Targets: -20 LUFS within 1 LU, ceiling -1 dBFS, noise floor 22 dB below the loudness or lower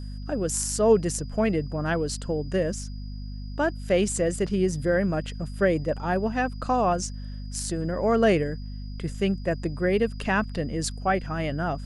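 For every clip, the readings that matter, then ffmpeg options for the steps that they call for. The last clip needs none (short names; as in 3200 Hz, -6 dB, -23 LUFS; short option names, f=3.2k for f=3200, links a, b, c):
hum 50 Hz; harmonics up to 250 Hz; hum level -33 dBFS; steady tone 4900 Hz; tone level -52 dBFS; loudness -26.0 LUFS; peak -8.5 dBFS; loudness target -20.0 LUFS
-> -af "bandreject=f=50:t=h:w=6,bandreject=f=100:t=h:w=6,bandreject=f=150:t=h:w=6,bandreject=f=200:t=h:w=6,bandreject=f=250:t=h:w=6"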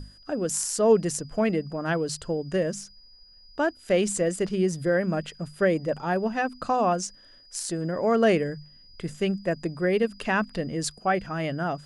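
hum none; steady tone 4900 Hz; tone level -52 dBFS
-> -af "bandreject=f=4.9k:w=30"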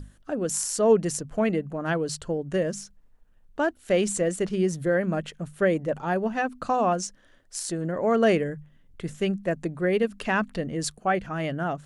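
steady tone none; loudness -26.5 LUFS; peak -9.5 dBFS; loudness target -20.0 LUFS
-> -af "volume=6.5dB"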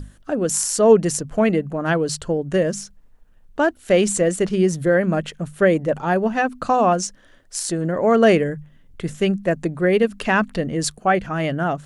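loudness -20.0 LUFS; peak -3.0 dBFS; noise floor -51 dBFS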